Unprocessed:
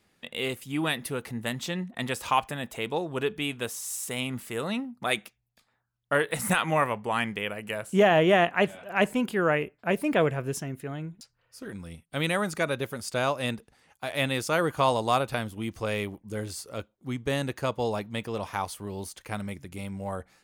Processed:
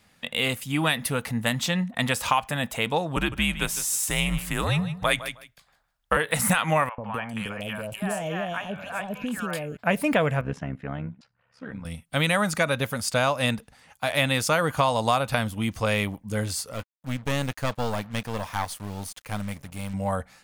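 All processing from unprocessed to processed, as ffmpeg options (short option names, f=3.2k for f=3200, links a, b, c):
-filter_complex "[0:a]asettb=1/sr,asplit=3[a][b][c];[a]atrim=end=3.164[d];[b]atrim=start=3.16:end=6.17,asetpts=PTS-STARTPTS,afade=t=in:d=0.004:c=qsin,afade=t=out:st=3.006:d=0.004:c=qsin,afreqshift=-85,aecho=1:1:156|312:0.2|0.0339,atrim=end_sample=132741[e];[c]atrim=start=6.166[f];[d][e]acrossfade=d=0.004:c1=hsin:c2=qsin[g];[g][f]acrossfade=d=0.004:c1=qsin:c2=hsin,asettb=1/sr,asplit=3[h][i][j];[h]atrim=end=6.894[k];[i]atrim=start=6.89:end=9.77,asetpts=PTS-STARTPTS,afade=t=in:d=0.004:c=qsin,afade=t=out:st=2.876:d=0.004:c=qsin,bandreject=f=2k:w=6.9,acompressor=threshold=-32dB:ratio=5:attack=3.2:release=140:knee=1:detection=peak,acrossover=split=730|2700[l][m][n];[l]adelay=90[o];[n]adelay=250[p];[o][m][p]amix=inputs=3:normalize=0,atrim=end_sample=127008[q];[j]atrim=start=9.766[r];[k][q]acrossfade=d=0.004:c1=hsin:c2=qsin[s];[s][r]acrossfade=d=0.004:c1=qsin:c2=hsin,asettb=1/sr,asplit=3[t][u][v];[t]atrim=end=10.414[w];[u]atrim=start=10.41:end=11.85,asetpts=PTS-STARTPTS,afade=t=in:d=0.004:c=qsin,afade=t=out:st=1.436:d=0.004:c=qsin,highpass=110,lowpass=2.3k,tremolo=f=68:d=0.75[x];[v]atrim=start=11.846[y];[w][x]acrossfade=d=0.004:c1=hsin:c2=qsin[z];[z][y]acrossfade=d=0.004:c1=qsin:c2=hsin,asettb=1/sr,asplit=3[aa][ab][ac];[aa]atrim=end=16.734[ad];[ab]atrim=start=16.73:end=19.94,asetpts=PTS-STARTPTS,afade=t=in:d=0.004:c=qsin,afade=t=out:st=3.206:d=0.004:c=qsin,acrusher=bits=7:mix=0:aa=0.5,aeval=exprs='(tanh(17.8*val(0)+0.8)-tanh(0.8))/17.8':c=same[ae];[ac]atrim=start=19.936[af];[ad][ae]acrossfade=d=0.004:c1=hsin:c2=qsin[ag];[ag][af]acrossfade=d=0.004:c1=qsin:c2=hsin,equalizer=f=370:t=o:w=0.43:g=-13.5,acompressor=threshold=-26dB:ratio=6,volume=8dB"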